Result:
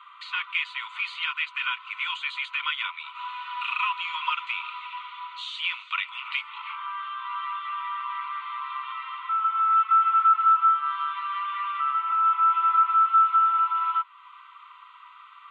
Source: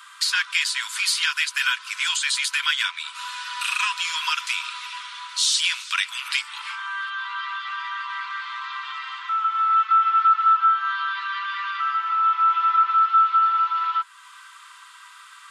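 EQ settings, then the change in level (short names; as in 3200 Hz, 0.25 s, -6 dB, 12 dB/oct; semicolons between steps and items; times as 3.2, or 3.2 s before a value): air absorption 110 m; tape spacing loss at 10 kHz 30 dB; fixed phaser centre 1100 Hz, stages 8; +5.5 dB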